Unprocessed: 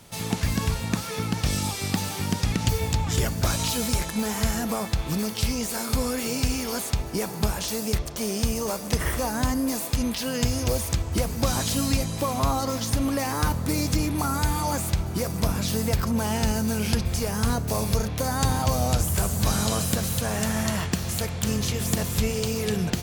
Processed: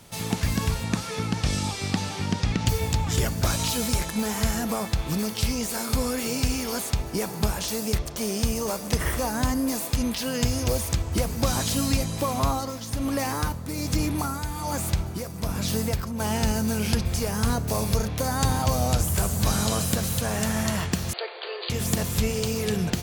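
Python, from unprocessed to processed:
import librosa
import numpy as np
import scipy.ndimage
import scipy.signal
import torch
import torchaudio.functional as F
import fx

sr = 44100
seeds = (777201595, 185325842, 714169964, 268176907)

y = fx.lowpass(x, sr, hz=fx.line((0.83, 11000.0), (2.65, 5200.0)), slope=12, at=(0.83, 2.65), fade=0.02)
y = fx.tremolo(y, sr, hz=1.2, depth=0.57, at=(12.4, 16.2))
y = fx.brickwall_bandpass(y, sr, low_hz=340.0, high_hz=4800.0, at=(21.13, 21.7))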